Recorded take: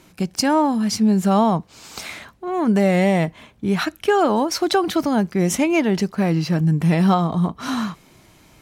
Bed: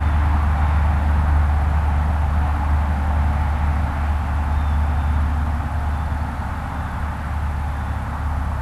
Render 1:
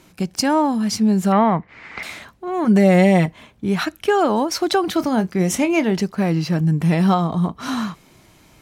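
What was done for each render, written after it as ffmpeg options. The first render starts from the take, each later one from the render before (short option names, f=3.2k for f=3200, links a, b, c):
-filter_complex "[0:a]asettb=1/sr,asplit=3[a][b][c];[a]atrim=end=1.324[d];[b]atrim=start=1.32:end=2.03,asetpts=PTS-STARTPTS,afade=t=in:d=0.004:c=qsin,afade=t=out:st=0.706:d=0.004:c=qsin,lowpass=f=2k:t=q:w=8.5[e];[c]atrim=start=2.026[f];[d][e]acrossfade=d=0.004:c1=hsin:c2=qsin[g];[g][f]acrossfade=d=0.004:c1=qsin:c2=hsin,asettb=1/sr,asplit=3[h][i][j];[h]atrim=end=2.644[k];[i]atrim=start=2.64:end=3.26,asetpts=PTS-STARTPTS,afade=t=in:d=0.004:c=qsin,afade=t=out:st=0.616:d=0.004:c=qsin,aecho=1:1:5.5:0.65,atrim=end_sample=27342[l];[j]atrim=start=3.256[m];[k][l]acrossfade=d=0.004:c1=hsin:c2=qsin[n];[n][m]acrossfade=d=0.004:c1=qsin:c2=hsin,asettb=1/sr,asplit=3[o][p][q];[o]atrim=end=4.934[r];[p]atrim=start=4.93:end=5.92,asetpts=PTS-STARTPTS,afade=t=in:d=0.004:c=qsin,afade=t=out:st=0.986:d=0.004:c=qsin,asplit=2[s][t];[t]adelay=27,volume=-12.5dB[u];[s][u]amix=inputs=2:normalize=0,atrim=end_sample=43659[v];[q]atrim=start=5.916[w];[r][v]acrossfade=d=0.004:c1=hsin:c2=qsin[x];[x][w]acrossfade=d=0.004:c1=qsin:c2=hsin"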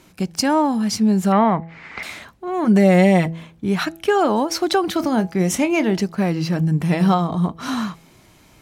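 -af "bandreject=f=164.8:t=h:w=4,bandreject=f=329.6:t=h:w=4,bandreject=f=494.4:t=h:w=4,bandreject=f=659.2:t=h:w=4,bandreject=f=824:t=h:w=4"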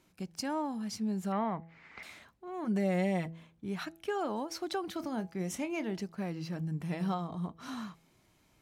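-af "volume=-17dB"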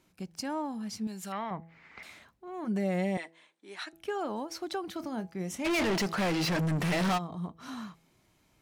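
-filter_complex "[0:a]asettb=1/sr,asplit=3[a][b][c];[a]atrim=end=1.074[d];[b]atrim=start=1.07:end=1.51,asetpts=PTS-STARTPTS,afade=t=in:d=0.004:c=qsin,afade=t=out:st=0.436:d=0.004:c=qsin,tiltshelf=f=1.2k:g=-8.5[e];[c]atrim=start=1.506[f];[d][e]acrossfade=d=0.004:c1=hsin:c2=qsin[g];[g][f]acrossfade=d=0.004:c1=qsin:c2=hsin,asettb=1/sr,asplit=3[h][i][j];[h]atrim=end=3.174[k];[i]atrim=start=3.17:end=3.93,asetpts=PTS-STARTPTS,afade=t=in:d=0.004:c=qsin,afade=t=out:st=0.756:d=0.004:c=qsin,highpass=f=370:w=0.5412,highpass=f=370:w=1.3066,equalizer=f=460:t=q:w=4:g=-7,equalizer=f=690:t=q:w=4:g=-4,equalizer=f=1.2k:t=q:w=4:g=-3,equalizer=f=1.9k:t=q:w=4:g=5,equalizer=f=3.9k:t=q:w=4:g=5,equalizer=f=8.8k:t=q:w=4:g=8,lowpass=f=9.8k:w=0.5412,lowpass=f=9.8k:w=1.3066[l];[j]atrim=start=3.926[m];[k][l]acrossfade=d=0.004:c1=hsin:c2=qsin[n];[n][m]acrossfade=d=0.004:c1=qsin:c2=hsin,asplit=3[o][p][q];[o]afade=t=out:st=5.64:d=0.02[r];[p]asplit=2[s][t];[t]highpass=f=720:p=1,volume=34dB,asoftclip=type=tanh:threshold=-21.5dB[u];[s][u]amix=inputs=2:normalize=0,lowpass=f=6.2k:p=1,volume=-6dB,afade=t=in:st=5.64:d=0.02,afade=t=out:st=7.17:d=0.02[v];[q]afade=t=in:st=7.17:d=0.02[w];[r][v][w]amix=inputs=3:normalize=0"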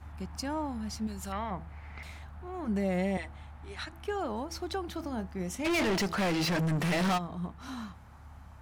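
-filter_complex "[1:a]volume=-27.5dB[a];[0:a][a]amix=inputs=2:normalize=0"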